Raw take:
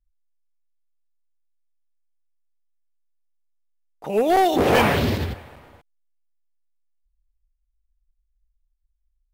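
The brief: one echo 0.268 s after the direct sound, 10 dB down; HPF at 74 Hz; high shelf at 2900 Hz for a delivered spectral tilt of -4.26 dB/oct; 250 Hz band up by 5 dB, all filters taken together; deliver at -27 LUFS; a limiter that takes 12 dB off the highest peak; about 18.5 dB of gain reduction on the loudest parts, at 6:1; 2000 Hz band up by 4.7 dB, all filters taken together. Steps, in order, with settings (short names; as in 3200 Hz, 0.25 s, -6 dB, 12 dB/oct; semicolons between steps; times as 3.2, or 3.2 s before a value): HPF 74 Hz; bell 250 Hz +6.5 dB; bell 2000 Hz +4 dB; high shelf 2900 Hz +4.5 dB; compressor 6:1, threshold -31 dBFS; limiter -32 dBFS; echo 0.268 s -10 dB; gain +13 dB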